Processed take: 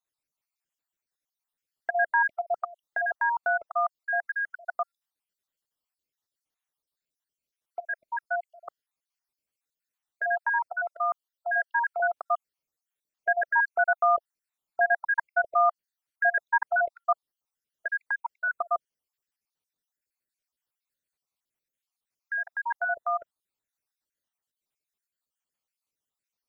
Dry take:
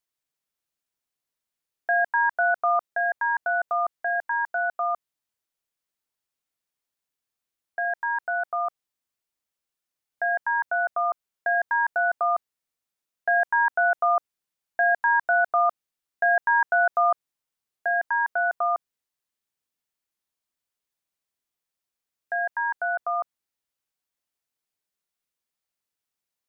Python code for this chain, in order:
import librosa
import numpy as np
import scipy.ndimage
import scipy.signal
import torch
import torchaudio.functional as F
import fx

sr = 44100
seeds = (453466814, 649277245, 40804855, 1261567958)

y = fx.spec_dropout(x, sr, seeds[0], share_pct=54)
y = fx.highpass(y, sr, hz=700.0, slope=12, at=(10.72, 12.0))